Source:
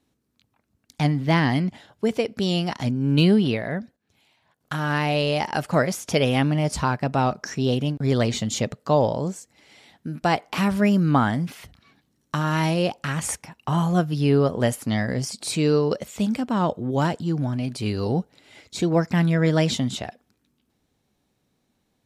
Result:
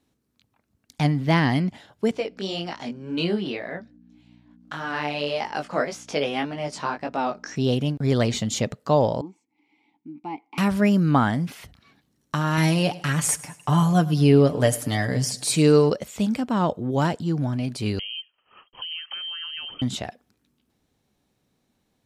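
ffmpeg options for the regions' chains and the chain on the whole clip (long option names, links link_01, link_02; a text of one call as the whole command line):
ffmpeg -i in.wav -filter_complex "[0:a]asettb=1/sr,asplit=3[link_01][link_02][link_03];[link_01]atrim=end=2.114[link_04];[link_02]atrim=start=2.11:end=7.56,asetpts=PTS-STARTPTS,afade=type=in:duration=0.004:curve=qsin,afade=type=out:start_time=5.446:duration=0.004:curve=qsin,aeval=exprs='val(0)+0.0158*(sin(2*PI*60*n/s)+sin(2*PI*2*60*n/s)/2+sin(2*PI*3*60*n/s)/3+sin(2*PI*4*60*n/s)/4+sin(2*PI*5*60*n/s)/5)':channel_layout=same,highpass=280,lowpass=6500,flanger=delay=17.5:depth=3.9:speed=1.8[link_05];[link_03]atrim=start=7.556[link_06];[link_04][link_05]acrossfade=duration=0.004:curve1=hsin:curve2=qsin[link_07];[link_07][link_06]acrossfade=duration=0.004:curve1=qsin:curve2=hsin,asettb=1/sr,asplit=3[link_08][link_09][link_10];[link_08]atrim=end=9.214[link_11];[link_09]atrim=start=9.21:end=10.58,asetpts=PTS-STARTPTS,afade=type=in:duration=0.004:curve=qsin,afade=type=out:start_time=1.366:duration=0.004:curve=qsin,deesser=0.65,asplit=3[link_12][link_13][link_14];[link_12]bandpass=frequency=300:width_type=q:width=8,volume=0dB[link_15];[link_13]bandpass=frequency=870:width_type=q:width=8,volume=-6dB[link_16];[link_14]bandpass=frequency=2240:width_type=q:width=8,volume=-9dB[link_17];[link_15][link_16][link_17]amix=inputs=3:normalize=0[link_18];[link_10]atrim=start=10.576[link_19];[link_11][link_18]acrossfade=duration=0.004:curve1=hsin:curve2=qsin[link_20];[link_20][link_19]acrossfade=duration=0.004:curve1=qsin:curve2=hsin,asettb=1/sr,asplit=3[link_21][link_22][link_23];[link_21]atrim=end=12.574[link_24];[link_22]atrim=start=12.57:end=15.9,asetpts=PTS-STARTPTS,afade=type=in:duration=0.004:curve=qsin,afade=type=out:start_time=3.326:duration=0.004:curve=qsin,highshelf=frequency=6100:gain=6,aecho=1:1:6.8:0.55,atrim=end_sample=146853,aecho=1:1:103|206|309|412:0.106|0.0508|0.0244|0.0117,atrim=end_sample=146853[link_25];[link_23]atrim=start=15.896[link_26];[link_24][link_25]acrossfade=duration=0.004:curve1=hsin:curve2=qsin[link_27];[link_27][link_26]acrossfade=duration=0.004:curve1=qsin:curve2=hsin,asettb=1/sr,asplit=3[link_28][link_29][link_30];[link_28]atrim=end=17.994[link_31];[link_29]atrim=start=17.99:end=19.82,asetpts=PTS-STARTPTS,afade=type=in:duration=0.004:curve=qsin,afade=type=out:start_time=1.826:duration=0.004:curve=qsin,agate=range=-33dB:threshold=-47dB:ratio=3:release=100:detection=peak,acompressor=threshold=-30dB:ratio=12:attack=3.2:release=140:knee=1:detection=peak,lowpass=frequency=2800:width_type=q:width=0.5098,lowpass=frequency=2800:width_type=q:width=0.6013,lowpass=frequency=2800:width_type=q:width=0.9,lowpass=frequency=2800:width_type=q:width=2.563,afreqshift=-3300[link_32];[link_30]atrim=start=19.816[link_33];[link_31][link_32]acrossfade=duration=0.004:curve1=hsin:curve2=qsin[link_34];[link_34][link_33]acrossfade=duration=0.004:curve1=qsin:curve2=hsin" out.wav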